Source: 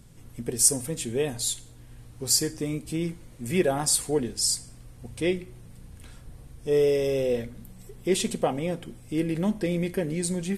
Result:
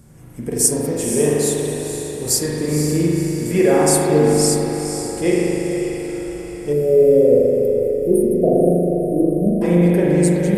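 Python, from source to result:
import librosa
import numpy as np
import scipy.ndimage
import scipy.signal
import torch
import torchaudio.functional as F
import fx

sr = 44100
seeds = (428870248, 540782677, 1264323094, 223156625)

p1 = fx.highpass(x, sr, hz=58.0, slope=6)
p2 = fx.peak_eq(p1, sr, hz=3400.0, db=-9.0, octaves=1.2)
p3 = fx.rev_spring(p2, sr, rt60_s=2.7, pass_ms=(40,), chirp_ms=75, drr_db=-5.0)
p4 = fx.spec_erase(p3, sr, start_s=6.73, length_s=2.89, low_hz=730.0, high_hz=8900.0)
p5 = p4 + fx.echo_diffused(p4, sr, ms=500, feedback_pct=53, wet_db=-8, dry=0)
p6 = fx.end_taper(p5, sr, db_per_s=230.0)
y = F.gain(torch.from_numpy(p6), 6.0).numpy()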